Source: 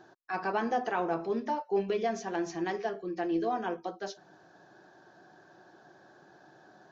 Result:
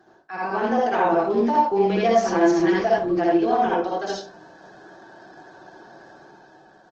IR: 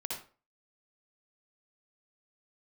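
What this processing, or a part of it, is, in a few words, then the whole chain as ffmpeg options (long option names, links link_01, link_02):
far-field microphone of a smart speaker: -filter_complex "[0:a]asplit=3[link_01][link_02][link_03];[link_01]afade=type=out:start_time=1.74:duration=0.02[link_04];[link_02]aecho=1:1:6:0.74,afade=type=in:start_time=1.74:duration=0.02,afade=type=out:start_time=3.23:duration=0.02[link_05];[link_03]afade=type=in:start_time=3.23:duration=0.02[link_06];[link_04][link_05][link_06]amix=inputs=3:normalize=0[link_07];[1:a]atrim=start_sample=2205[link_08];[link_07][link_08]afir=irnorm=-1:irlink=0,highpass=frequency=81:poles=1,dynaudnorm=framelen=170:gausssize=9:maxgain=7dB,volume=3dB" -ar 48000 -c:a libopus -b:a 16k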